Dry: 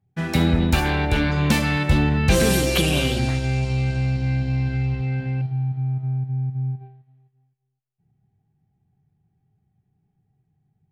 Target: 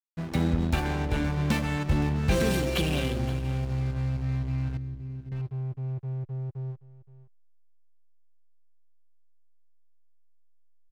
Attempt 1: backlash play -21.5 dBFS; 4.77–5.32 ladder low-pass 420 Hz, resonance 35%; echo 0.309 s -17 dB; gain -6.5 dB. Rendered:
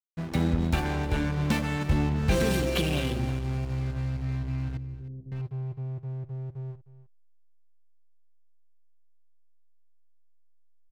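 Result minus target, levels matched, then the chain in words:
echo 0.211 s early
backlash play -21.5 dBFS; 4.77–5.32 ladder low-pass 420 Hz, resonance 35%; echo 0.52 s -17 dB; gain -6.5 dB

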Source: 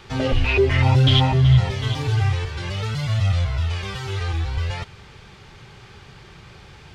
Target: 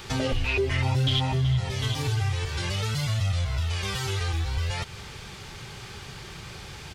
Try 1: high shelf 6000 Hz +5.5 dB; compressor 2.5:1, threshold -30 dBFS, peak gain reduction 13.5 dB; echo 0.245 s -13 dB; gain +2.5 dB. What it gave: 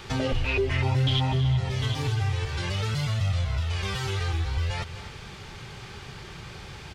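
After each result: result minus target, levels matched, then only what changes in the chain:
echo-to-direct +11.5 dB; 8000 Hz band -4.5 dB
change: echo 0.245 s -24.5 dB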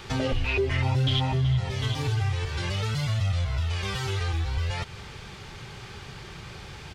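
8000 Hz band -4.5 dB
change: high shelf 6000 Hz +14.5 dB

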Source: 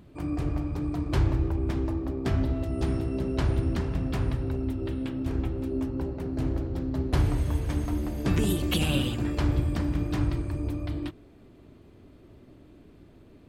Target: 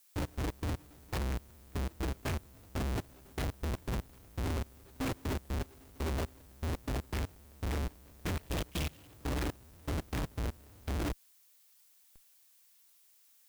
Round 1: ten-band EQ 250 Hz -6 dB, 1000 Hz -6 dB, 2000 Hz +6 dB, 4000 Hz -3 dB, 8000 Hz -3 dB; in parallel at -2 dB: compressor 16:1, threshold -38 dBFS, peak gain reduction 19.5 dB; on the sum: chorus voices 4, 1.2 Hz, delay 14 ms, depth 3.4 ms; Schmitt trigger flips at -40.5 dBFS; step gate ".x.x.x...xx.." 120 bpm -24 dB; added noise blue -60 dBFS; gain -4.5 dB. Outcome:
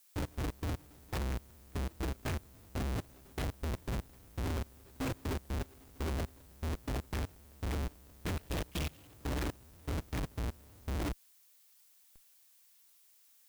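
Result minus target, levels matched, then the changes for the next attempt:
compressor: peak gain reduction +6 dB
change: compressor 16:1, threshold -31.5 dBFS, peak gain reduction 13.5 dB

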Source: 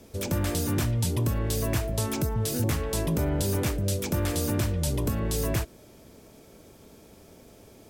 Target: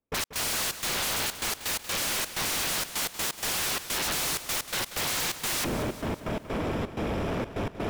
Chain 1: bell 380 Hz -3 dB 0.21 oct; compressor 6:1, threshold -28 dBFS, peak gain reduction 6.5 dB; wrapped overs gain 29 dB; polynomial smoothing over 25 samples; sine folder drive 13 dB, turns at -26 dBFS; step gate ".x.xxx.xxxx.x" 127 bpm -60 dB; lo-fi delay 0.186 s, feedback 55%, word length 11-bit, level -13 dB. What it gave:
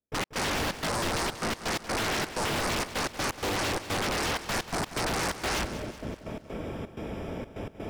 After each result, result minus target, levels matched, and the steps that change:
sine folder: distortion -11 dB; compressor: peak gain reduction +6.5 dB
change: sine folder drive 23 dB, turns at -26 dBFS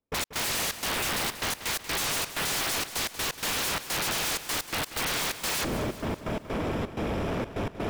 compressor: peak gain reduction +6.5 dB
remove: compressor 6:1, threshold -28 dBFS, peak gain reduction 6.5 dB

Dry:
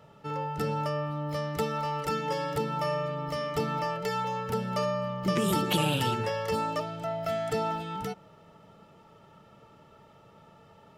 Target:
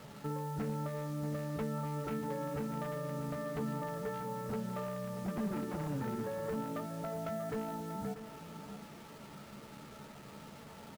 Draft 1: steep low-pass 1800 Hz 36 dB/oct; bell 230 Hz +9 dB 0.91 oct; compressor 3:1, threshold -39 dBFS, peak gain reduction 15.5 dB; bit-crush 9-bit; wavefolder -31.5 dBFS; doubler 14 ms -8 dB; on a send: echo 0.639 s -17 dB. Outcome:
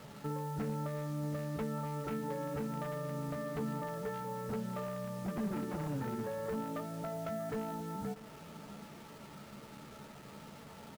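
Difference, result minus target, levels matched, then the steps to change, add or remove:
echo-to-direct -6 dB
change: echo 0.639 s -11 dB

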